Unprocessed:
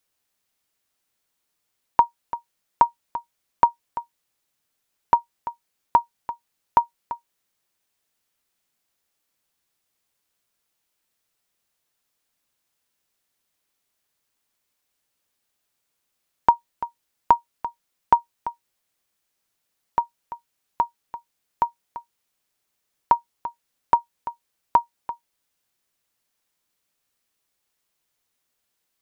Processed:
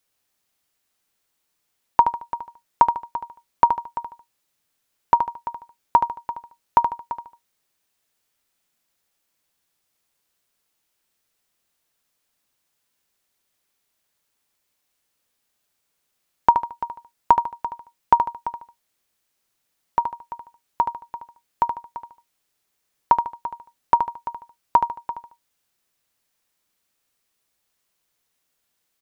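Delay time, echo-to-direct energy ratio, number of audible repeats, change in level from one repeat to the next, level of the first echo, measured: 74 ms, −7.0 dB, 3, −9.0 dB, −7.5 dB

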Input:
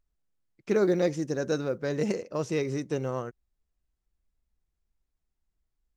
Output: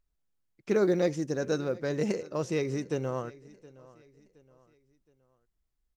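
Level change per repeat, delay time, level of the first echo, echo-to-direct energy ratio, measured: −8.0 dB, 719 ms, −21.5 dB, −21.0 dB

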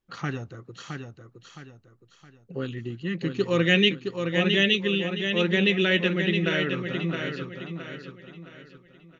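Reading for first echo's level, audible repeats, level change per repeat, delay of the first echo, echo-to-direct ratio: −6.0 dB, 4, −8.5 dB, 666 ms, −5.5 dB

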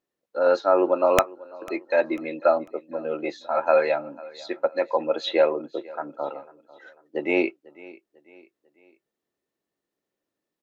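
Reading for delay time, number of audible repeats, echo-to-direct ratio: 496 ms, 2, −20.5 dB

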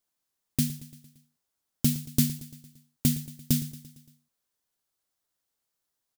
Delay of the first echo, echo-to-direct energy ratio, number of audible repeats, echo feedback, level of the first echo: 114 ms, −14.5 dB, 4, 58%, −16.5 dB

